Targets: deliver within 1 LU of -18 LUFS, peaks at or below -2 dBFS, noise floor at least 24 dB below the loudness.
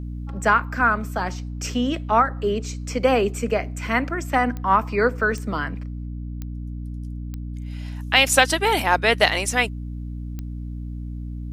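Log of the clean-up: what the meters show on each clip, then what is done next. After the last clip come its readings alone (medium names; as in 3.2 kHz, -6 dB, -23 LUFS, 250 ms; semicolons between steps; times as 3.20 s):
clicks found 5; hum 60 Hz; highest harmonic 300 Hz; hum level -28 dBFS; loudness -21.0 LUFS; peak level -1.5 dBFS; loudness target -18.0 LUFS
-> de-click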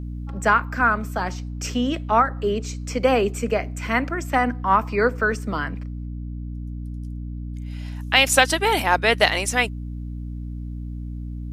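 clicks found 0; hum 60 Hz; highest harmonic 300 Hz; hum level -28 dBFS
-> hum notches 60/120/180/240/300 Hz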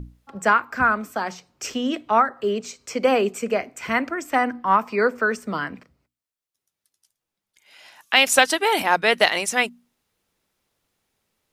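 hum not found; loudness -21.5 LUFS; peak level -1.5 dBFS; loudness target -18.0 LUFS
-> trim +3.5 dB; peak limiter -2 dBFS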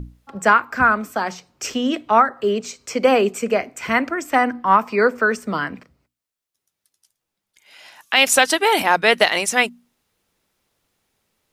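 loudness -18.5 LUFS; peak level -2.0 dBFS; noise floor -82 dBFS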